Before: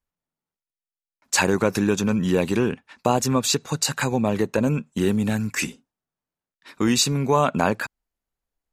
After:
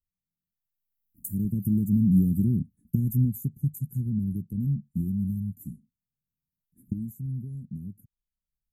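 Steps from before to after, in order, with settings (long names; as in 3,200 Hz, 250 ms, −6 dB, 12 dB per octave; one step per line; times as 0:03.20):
camcorder AGC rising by 14 dB per second
source passing by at 0:02.44, 24 m/s, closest 24 metres
inverse Chebyshev band-stop filter 610–5,200 Hz, stop band 60 dB
level +5 dB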